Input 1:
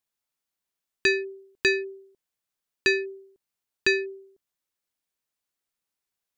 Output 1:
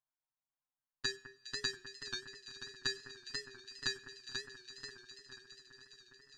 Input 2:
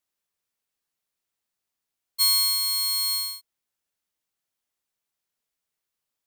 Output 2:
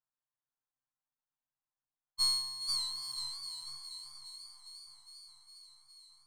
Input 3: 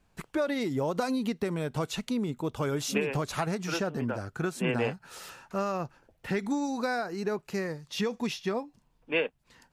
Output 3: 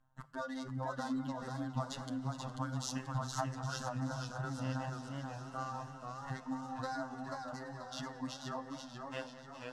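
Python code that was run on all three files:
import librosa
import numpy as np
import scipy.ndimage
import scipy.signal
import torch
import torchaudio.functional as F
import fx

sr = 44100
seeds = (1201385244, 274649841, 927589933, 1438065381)

p1 = fx.wiener(x, sr, points=9)
p2 = fx.dereverb_blind(p1, sr, rt60_s=1.9)
p3 = fx.high_shelf(p2, sr, hz=3200.0, db=7.5)
p4 = fx.fixed_phaser(p3, sr, hz=990.0, stages=4)
p5 = np.clip(10.0 ** (19.5 / 20.0) * p4, -1.0, 1.0) / 10.0 ** (19.5 / 20.0)
p6 = p4 + (p5 * librosa.db_to_amplitude(-6.0))
p7 = fx.robotise(p6, sr, hz=131.0)
p8 = fx.air_absorb(p7, sr, metres=79.0)
p9 = p8 + fx.echo_alternate(p8, sr, ms=205, hz=2100.0, feedback_pct=88, wet_db=-12, dry=0)
p10 = fx.rev_double_slope(p9, sr, seeds[0], early_s=0.58, late_s=4.2, knee_db=-19, drr_db=14.5)
p11 = fx.echo_warbled(p10, sr, ms=486, feedback_pct=46, rate_hz=2.8, cents=113, wet_db=-5.0)
y = p11 * librosa.db_to_amplitude(-5.5)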